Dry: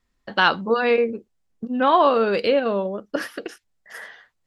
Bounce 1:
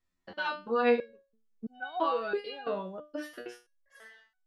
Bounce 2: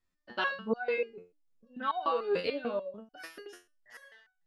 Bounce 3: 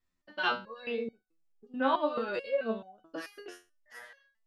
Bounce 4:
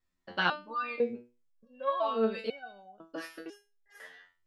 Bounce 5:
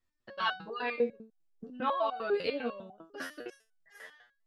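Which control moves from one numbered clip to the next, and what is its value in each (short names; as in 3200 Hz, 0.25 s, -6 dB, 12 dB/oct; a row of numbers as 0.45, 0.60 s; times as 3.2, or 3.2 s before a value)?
stepped resonator, rate: 3, 6.8, 4.6, 2, 10 Hz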